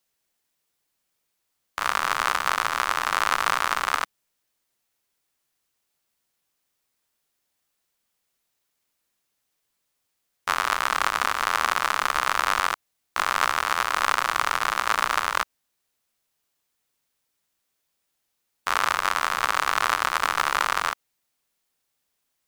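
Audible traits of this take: noise floor -77 dBFS; spectral tilt -1.5 dB/oct

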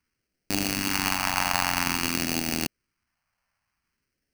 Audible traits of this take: aliases and images of a low sample rate 3600 Hz, jitter 0%; phasing stages 2, 0.51 Hz, lowest notch 360–1000 Hz

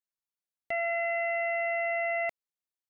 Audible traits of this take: noise floor -95 dBFS; spectral tilt -3.5 dB/oct

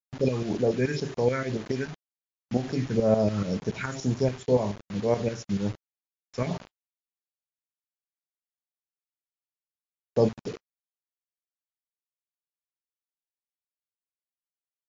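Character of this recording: phasing stages 4, 2 Hz, lowest notch 650–4000 Hz; tremolo saw up 7 Hz, depth 70%; a quantiser's noise floor 8-bit, dither none; MP3

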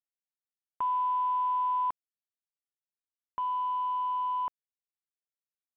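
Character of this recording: a quantiser's noise floor 8-bit, dither none; µ-law

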